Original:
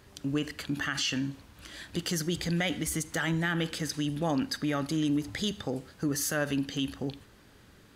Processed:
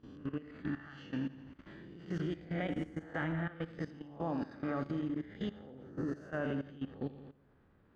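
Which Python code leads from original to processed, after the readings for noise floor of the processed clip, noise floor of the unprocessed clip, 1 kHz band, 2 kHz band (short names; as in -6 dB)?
-67 dBFS, -57 dBFS, -6.5 dB, -11.0 dB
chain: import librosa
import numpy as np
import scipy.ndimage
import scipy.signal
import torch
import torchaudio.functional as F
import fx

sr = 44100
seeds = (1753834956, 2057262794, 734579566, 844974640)

y = fx.spec_swells(x, sr, rise_s=0.8)
y = scipy.signal.sosfilt(scipy.signal.butter(2, 1400.0, 'lowpass', fs=sr, output='sos'), y)
y = fx.tremolo_shape(y, sr, shape='triangle', hz=1.9, depth_pct=50)
y = fx.echo_feedback(y, sr, ms=85, feedback_pct=58, wet_db=-8.0)
y = fx.level_steps(y, sr, step_db=16)
y = F.gain(torch.from_numpy(y), -3.0).numpy()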